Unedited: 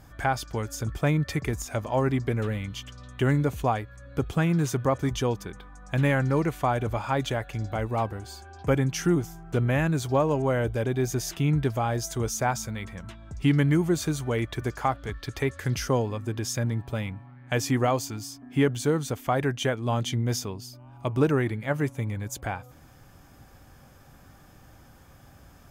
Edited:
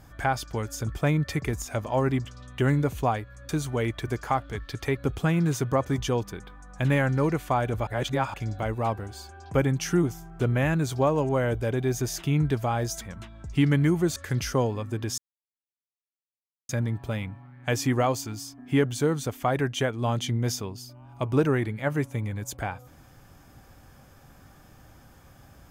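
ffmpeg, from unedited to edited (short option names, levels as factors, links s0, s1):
-filter_complex "[0:a]asplit=9[s0][s1][s2][s3][s4][s5][s6][s7][s8];[s0]atrim=end=2.252[s9];[s1]atrim=start=2.858:end=4.102[s10];[s2]atrim=start=14.028:end=15.512[s11];[s3]atrim=start=4.098:end=7.002[s12];[s4]atrim=start=6.998:end=7.472,asetpts=PTS-STARTPTS,areverse[s13];[s5]atrim=start=7.468:end=12.142[s14];[s6]atrim=start=12.878:end=14.032[s15];[s7]atrim=start=15.508:end=16.53,asetpts=PTS-STARTPTS,afade=t=out:st=1.018:d=0.004:c=hsin,apad=pad_dur=1.51[s16];[s8]atrim=start=16.53,asetpts=PTS-STARTPTS,afade=t=in:d=0.004:c=hsin[s17];[s9][s10]acrossfade=d=0.004:c1=hsin:c2=hsin[s18];[s18][s11]acrossfade=d=0.004:c1=hsin:c2=hsin[s19];[s19][s12]acrossfade=d=0.004:c1=hsin:c2=hsin[s20];[s20][s13]acrossfade=d=0.004:c1=hsin:c2=hsin[s21];[s21][s14]acrossfade=d=0.004:c1=hsin:c2=hsin[s22];[s22][s15]acrossfade=d=0.004:c1=hsin:c2=hsin[s23];[s16][s17]concat=n=2:v=0:a=1[s24];[s23][s24]acrossfade=d=0.004:c1=hsin:c2=hsin"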